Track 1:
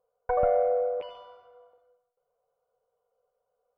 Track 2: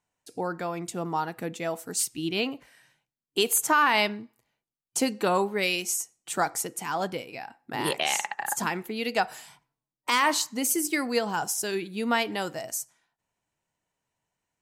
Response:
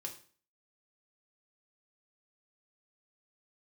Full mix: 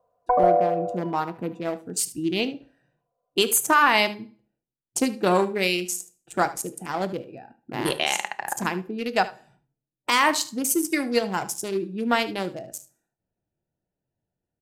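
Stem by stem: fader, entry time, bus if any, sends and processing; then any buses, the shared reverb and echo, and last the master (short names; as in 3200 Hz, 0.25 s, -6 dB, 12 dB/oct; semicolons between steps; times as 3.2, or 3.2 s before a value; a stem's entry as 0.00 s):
-0.5 dB, 0.00 s, no send, no echo send, small resonant body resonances 680/1000 Hz, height 17 dB, ringing for 25 ms; auto duck -11 dB, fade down 1.00 s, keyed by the second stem
+1.5 dB, 0.00 s, send -4 dB, echo send -13.5 dB, Wiener smoothing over 41 samples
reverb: on, RT60 0.45 s, pre-delay 3 ms
echo: echo 75 ms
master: dry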